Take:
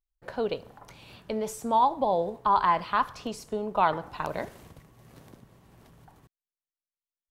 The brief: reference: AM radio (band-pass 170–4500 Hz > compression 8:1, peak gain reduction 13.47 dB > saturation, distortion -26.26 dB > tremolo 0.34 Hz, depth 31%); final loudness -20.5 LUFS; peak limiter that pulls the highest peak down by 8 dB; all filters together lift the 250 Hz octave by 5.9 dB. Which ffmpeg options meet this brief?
-af "equalizer=f=250:t=o:g=8.5,alimiter=limit=0.126:level=0:latency=1,highpass=170,lowpass=4500,acompressor=threshold=0.0158:ratio=8,asoftclip=threshold=0.0596,tremolo=f=0.34:d=0.31,volume=15"

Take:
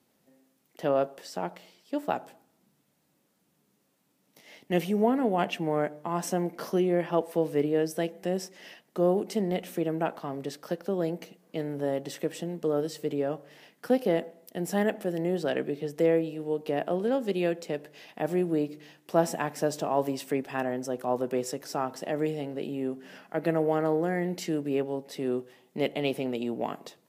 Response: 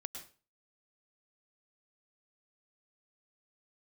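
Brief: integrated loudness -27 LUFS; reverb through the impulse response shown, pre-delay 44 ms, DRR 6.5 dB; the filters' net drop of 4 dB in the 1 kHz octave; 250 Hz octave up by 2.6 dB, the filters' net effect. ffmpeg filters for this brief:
-filter_complex "[0:a]equalizer=f=250:t=o:g=4,equalizer=f=1000:t=o:g=-6.5,asplit=2[s0][s1];[1:a]atrim=start_sample=2205,adelay=44[s2];[s1][s2]afir=irnorm=-1:irlink=0,volume=0.631[s3];[s0][s3]amix=inputs=2:normalize=0,volume=1.19"

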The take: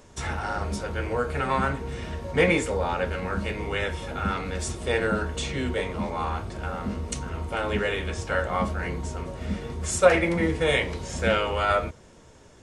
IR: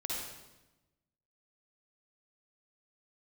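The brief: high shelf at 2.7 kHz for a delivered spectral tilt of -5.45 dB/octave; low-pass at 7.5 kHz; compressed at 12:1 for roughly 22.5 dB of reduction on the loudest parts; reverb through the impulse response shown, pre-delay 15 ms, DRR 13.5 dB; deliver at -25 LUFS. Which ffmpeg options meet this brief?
-filter_complex "[0:a]lowpass=7500,highshelf=f=2700:g=-8,acompressor=threshold=0.02:ratio=12,asplit=2[s0][s1];[1:a]atrim=start_sample=2205,adelay=15[s2];[s1][s2]afir=irnorm=-1:irlink=0,volume=0.15[s3];[s0][s3]amix=inputs=2:normalize=0,volume=4.73"

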